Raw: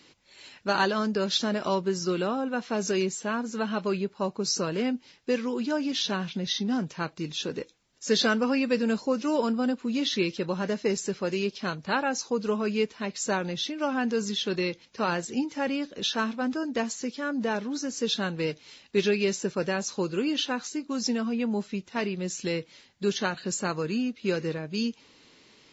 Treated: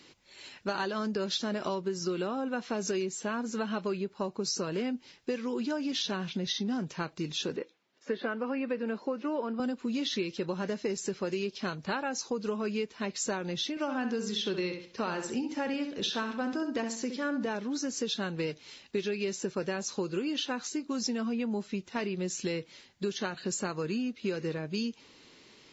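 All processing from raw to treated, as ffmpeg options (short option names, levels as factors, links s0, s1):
-filter_complex "[0:a]asettb=1/sr,asplit=3[s0][s1][s2];[s0]atrim=end=7.564[s3];[s1]atrim=start=7.56:end=9.6,asetpts=PTS-STARTPTS,afade=t=in:d=0.004:c=qsin,afade=t=out:st=2.036:d=0.004:c=qsin,acrossover=split=2500[s4][s5];[s5]acompressor=threshold=0.00316:ratio=4:attack=1:release=60[s6];[s4][s6]amix=inputs=2:normalize=0,highpass=250,lowpass=3500[s7];[s2]atrim=start=9.596[s8];[s3][s7]acrossfade=d=0.004:c1=hsin:c2=qsin[s9];[s9][s8]acrossfade=d=0.004:c1=qsin:c2=hsin,asettb=1/sr,asplit=3[s10][s11][s12];[s10]atrim=end=13.704[s13];[s11]atrim=start=13.7:end=17.46,asetpts=PTS-STARTPTS,afade=t=in:d=0.004:c=qsin,afade=t=out:st=3.756:d=0.004:c=qsin,bandreject=f=6700:w=19,asplit=2[s14][s15];[s15]adelay=66,lowpass=f=4600:p=1,volume=0.398,asplit=2[s16][s17];[s17]adelay=66,lowpass=f=4600:p=1,volume=0.31,asplit=2[s18][s19];[s19]adelay=66,lowpass=f=4600:p=1,volume=0.31,asplit=2[s20][s21];[s21]adelay=66,lowpass=f=4600:p=1,volume=0.31[s22];[s14][s16][s18][s20][s22]amix=inputs=5:normalize=0,atrim=end_sample=165816[s23];[s12]atrim=start=17.456[s24];[s13][s23]acrossfade=d=0.004:c1=hsin:c2=qsin[s25];[s25][s24]acrossfade=d=0.004:c1=qsin:c2=hsin,equalizer=f=370:w=7.9:g=3.5,acompressor=threshold=0.0355:ratio=6"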